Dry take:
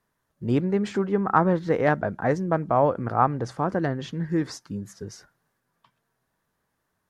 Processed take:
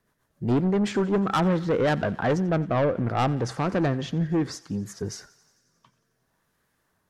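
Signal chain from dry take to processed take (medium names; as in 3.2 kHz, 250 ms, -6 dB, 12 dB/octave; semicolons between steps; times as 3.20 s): rotary cabinet horn 7.5 Hz, later 0.65 Hz, at 1.02 s; saturation -24.5 dBFS, distortion -9 dB; on a send: thinning echo 89 ms, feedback 74%, high-pass 570 Hz, level -20 dB; on the sum: trim +6.5 dB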